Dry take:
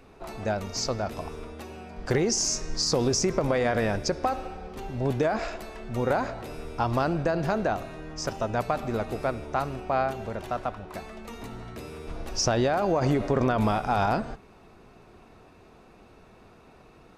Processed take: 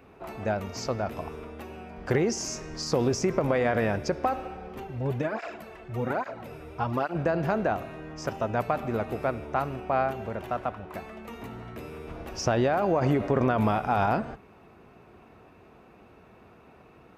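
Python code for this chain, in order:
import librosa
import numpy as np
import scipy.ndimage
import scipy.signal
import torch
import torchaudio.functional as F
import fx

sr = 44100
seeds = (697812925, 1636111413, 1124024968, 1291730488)

y = scipy.signal.sosfilt(scipy.signal.butter(2, 60.0, 'highpass', fs=sr, output='sos'), x)
y = fx.band_shelf(y, sr, hz=6100.0, db=-8.0, octaves=1.7)
y = fx.flanger_cancel(y, sr, hz=1.2, depth_ms=5.2, at=(4.83, 7.14), fade=0.02)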